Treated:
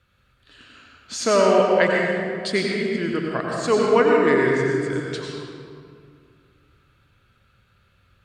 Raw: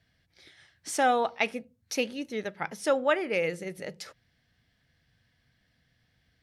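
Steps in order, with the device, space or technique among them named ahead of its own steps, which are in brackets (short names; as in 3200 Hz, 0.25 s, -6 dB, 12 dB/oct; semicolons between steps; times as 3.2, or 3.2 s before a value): slowed and reverbed (varispeed -22%; reverb RT60 2.2 s, pre-delay 84 ms, DRR -2 dB); gain +5 dB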